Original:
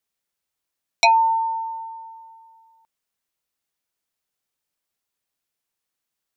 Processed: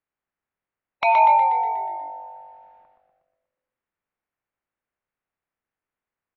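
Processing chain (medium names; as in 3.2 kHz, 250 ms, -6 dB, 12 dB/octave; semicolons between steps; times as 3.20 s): spectral peaks clipped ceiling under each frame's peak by 25 dB; low-pass 2.2 kHz 24 dB/octave; on a send: frequency-shifting echo 121 ms, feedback 57%, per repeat -49 Hz, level -5.5 dB; on the sum: gated-style reverb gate 170 ms rising, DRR 8.5 dB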